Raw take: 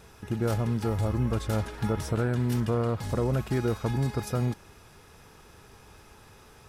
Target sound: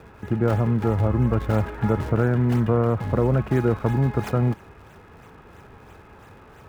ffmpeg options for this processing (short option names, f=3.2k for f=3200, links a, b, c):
-filter_complex "[0:a]highpass=46,acrossover=split=140|2600[a][b][c];[c]acrusher=samples=40:mix=1:aa=0.000001:lfo=1:lforange=64:lforate=3[d];[a][b][d]amix=inputs=3:normalize=0,volume=6.5dB"